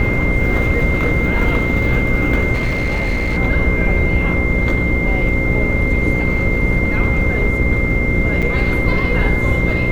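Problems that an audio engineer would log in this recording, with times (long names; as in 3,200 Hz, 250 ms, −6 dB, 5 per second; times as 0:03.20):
mains buzz 60 Hz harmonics 9 −21 dBFS
whistle 2,100 Hz −20 dBFS
0:02.53–0:03.38: clipping −14 dBFS
0:08.42–0:08.43: drop-out 6.3 ms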